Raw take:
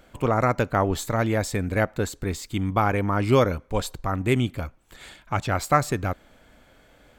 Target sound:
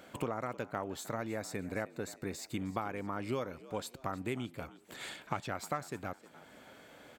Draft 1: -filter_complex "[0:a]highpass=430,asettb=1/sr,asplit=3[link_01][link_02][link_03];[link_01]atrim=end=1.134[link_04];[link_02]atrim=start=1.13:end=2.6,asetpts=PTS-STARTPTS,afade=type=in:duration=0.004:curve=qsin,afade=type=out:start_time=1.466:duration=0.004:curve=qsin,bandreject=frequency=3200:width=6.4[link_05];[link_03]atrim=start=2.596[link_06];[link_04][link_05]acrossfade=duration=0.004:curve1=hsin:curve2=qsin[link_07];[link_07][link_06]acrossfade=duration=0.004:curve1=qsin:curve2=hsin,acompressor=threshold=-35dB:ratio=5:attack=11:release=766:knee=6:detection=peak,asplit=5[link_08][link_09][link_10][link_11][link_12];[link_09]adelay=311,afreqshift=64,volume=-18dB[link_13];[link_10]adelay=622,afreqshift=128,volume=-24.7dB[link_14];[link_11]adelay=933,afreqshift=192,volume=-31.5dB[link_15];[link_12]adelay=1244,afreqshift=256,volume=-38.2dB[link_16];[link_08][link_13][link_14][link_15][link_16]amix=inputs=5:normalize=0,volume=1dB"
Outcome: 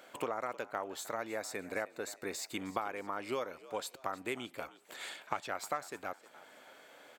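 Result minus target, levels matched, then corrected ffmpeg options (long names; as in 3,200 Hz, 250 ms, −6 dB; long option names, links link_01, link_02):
125 Hz band −12.5 dB
-filter_complex "[0:a]highpass=150,asettb=1/sr,asplit=3[link_01][link_02][link_03];[link_01]atrim=end=1.134[link_04];[link_02]atrim=start=1.13:end=2.6,asetpts=PTS-STARTPTS,afade=type=in:duration=0.004:curve=qsin,afade=type=out:start_time=1.466:duration=0.004:curve=qsin,bandreject=frequency=3200:width=6.4[link_05];[link_03]atrim=start=2.596[link_06];[link_04][link_05]acrossfade=duration=0.004:curve1=hsin:curve2=qsin[link_07];[link_07][link_06]acrossfade=duration=0.004:curve1=qsin:curve2=hsin,acompressor=threshold=-35dB:ratio=5:attack=11:release=766:knee=6:detection=peak,asplit=5[link_08][link_09][link_10][link_11][link_12];[link_09]adelay=311,afreqshift=64,volume=-18dB[link_13];[link_10]adelay=622,afreqshift=128,volume=-24.7dB[link_14];[link_11]adelay=933,afreqshift=192,volume=-31.5dB[link_15];[link_12]adelay=1244,afreqshift=256,volume=-38.2dB[link_16];[link_08][link_13][link_14][link_15][link_16]amix=inputs=5:normalize=0,volume=1dB"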